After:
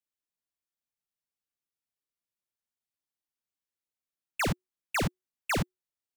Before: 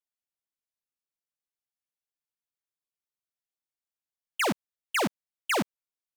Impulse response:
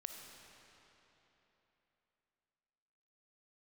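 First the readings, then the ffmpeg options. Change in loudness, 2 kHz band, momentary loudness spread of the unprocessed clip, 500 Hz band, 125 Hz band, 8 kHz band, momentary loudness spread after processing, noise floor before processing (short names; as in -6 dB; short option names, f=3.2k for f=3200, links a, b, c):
-2.5 dB, -3.0 dB, 10 LU, -4.0 dB, +8.0 dB, -2.5 dB, 9 LU, under -85 dBFS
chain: -af "afreqshift=-370,volume=-2dB"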